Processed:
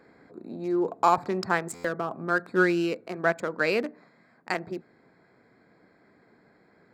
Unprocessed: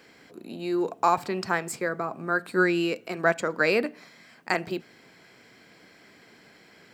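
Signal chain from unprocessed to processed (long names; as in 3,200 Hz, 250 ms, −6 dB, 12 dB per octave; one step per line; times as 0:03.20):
adaptive Wiener filter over 15 samples
speech leveller 2 s
buffer that repeats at 0:01.74, samples 512, times 8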